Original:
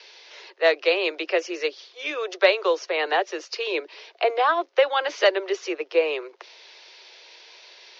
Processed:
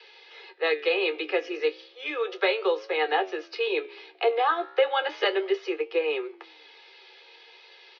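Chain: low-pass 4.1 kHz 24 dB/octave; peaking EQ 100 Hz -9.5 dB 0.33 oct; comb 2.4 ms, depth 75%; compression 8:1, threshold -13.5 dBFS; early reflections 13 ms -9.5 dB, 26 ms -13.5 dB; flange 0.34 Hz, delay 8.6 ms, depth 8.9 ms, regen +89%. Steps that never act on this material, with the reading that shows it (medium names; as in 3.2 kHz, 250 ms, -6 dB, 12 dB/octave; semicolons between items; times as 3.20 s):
peaking EQ 100 Hz: input has nothing below 290 Hz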